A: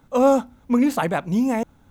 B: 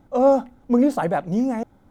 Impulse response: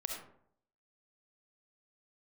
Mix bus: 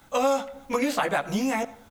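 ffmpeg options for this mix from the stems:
-filter_complex "[0:a]volume=-0.5dB,asplit=2[a][b];[b]volume=-16.5dB[c];[1:a]adelay=15,volume=2dB,asplit=2[d][e];[e]volume=-15dB[f];[2:a]atrim=start_sample=2205[g];[c][f]amix=inputs=2:normalize=0[h];[h][g]afir=irnorm=-1:irlink=0[i];[a][d][i]amix=inputs=3:normalize=0,tiltshelf=f=970:g=-8.5,acrossover=split=1600|4600[j][k][l];[j]acompressor=threshold=-23dB:ratio=4[m];[k]acompressor=threshold=-33dB:ratio=4[n];[l]acompressor=threshold=-43dB:ratio=4[o];[m][n][o]amix=inputs=3:normalize=0"

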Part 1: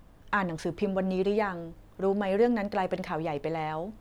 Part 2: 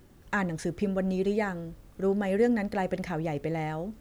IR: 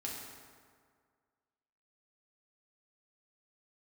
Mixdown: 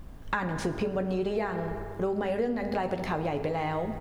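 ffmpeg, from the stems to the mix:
-filter_complex "[0:a]lowshelf=f=100:g=7,volume=1.5dB,asplit=2[a][b];[b]volume=-4dB[c];[1:a]volume=-1,adelay=15,volume=-5dB[d];[2:a]atrim=start_sample=2205[e];[c][e]afir=irnorm=-1:irlink=0[f];[a][d][f]amix=inputs=3:normalize=0,acompressor=threshold=-26dB:ratio=6"

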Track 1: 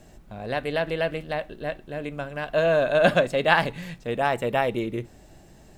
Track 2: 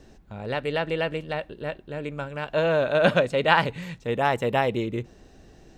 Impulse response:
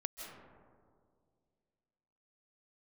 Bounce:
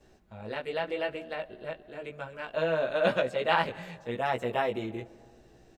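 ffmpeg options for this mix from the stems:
-filter_complex "[0:a]volume=-18.5dB,asplit=2[a][b];[b]volume=-3.5dB[c];[1:a]flanger=delay=15.5:depth=3.3:speed=0.93,volume=-1,adelay=7,volume=-3.5dB[d];[2:a]atrim=start_sample=2205[e];[c][e]afir=irnorm=-1:irlink=0[f];[a][d][f]amix=inputs=3:normalize=0,bass=f=250:g=-4,treble=f=4k:g=-2"

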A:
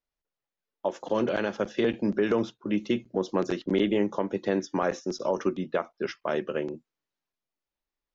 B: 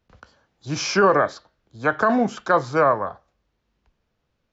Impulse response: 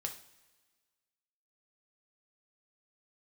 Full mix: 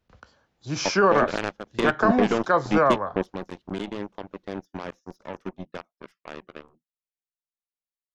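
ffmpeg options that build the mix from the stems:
-filter_complex "[0:a]acontrast=28,equalizer=f=180:t=o:w=0.35:g=9,aeval=exprs='0.473*(cos(1*acos(clip(val(0)/0.473,-1,1)))-cos(1*PI/2))+0.00335*(cos(5*acos(clip(val(0)/0.473,-1,1)))-cos(5*PI/2))+0.0133*(cos(6*acos(clip(val(0)/0.473,-1,1)))-cos(6*PI/2))+0.0841*(cos(7*acos(clip(val(0)/0.473,-1,1)))-cos(7*PI/2))':c=same,volume=-4.5dB[a];[1:a]volume=-2.5dB,asplit=2[b][c];[c]apad=whole_len=359168[d];[a][d]sidechaingate=range=-10dB:threshold=-53dB:ratio=16:detection=peak[e];[e][b]amix=inputs=2:normalize=0"

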